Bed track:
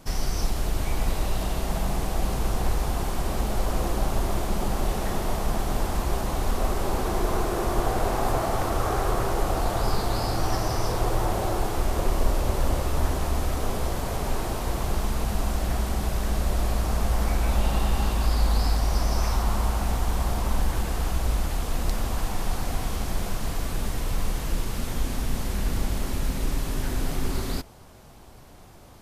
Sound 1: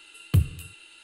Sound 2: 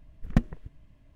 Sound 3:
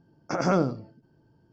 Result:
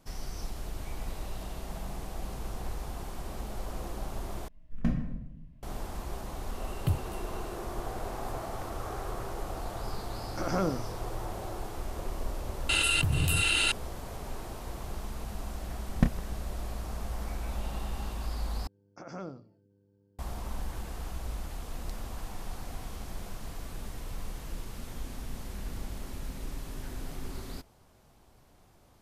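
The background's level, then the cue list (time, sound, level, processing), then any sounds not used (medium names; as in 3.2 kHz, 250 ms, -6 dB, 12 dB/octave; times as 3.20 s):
bed track -12 dB
4.48 s: replace with 2 -10.5 dB + simulated room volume 250 m³, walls mixed, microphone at 1.5 m
6.53 s: add 1 -8 dB
10.07 s: add 3 -6.5 dB
12.69 s: add 1 -11.5 dB + level flattener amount 100%
15.66 s: add 2 -2 dB + doubling 29 ms -8.5 dB
18.67 s: replace with 3 -18 dB + mains buzz 100 Hz, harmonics 5, -49 dBFS -3 dB/octave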